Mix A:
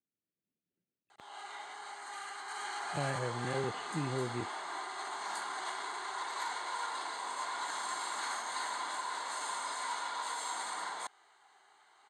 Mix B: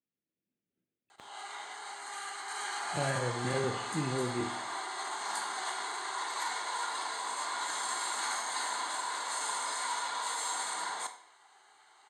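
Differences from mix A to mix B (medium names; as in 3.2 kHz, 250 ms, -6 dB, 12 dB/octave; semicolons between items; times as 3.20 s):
background: add treble shelf 5 kHz +6.5 dB; reverb: on, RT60 0.65 s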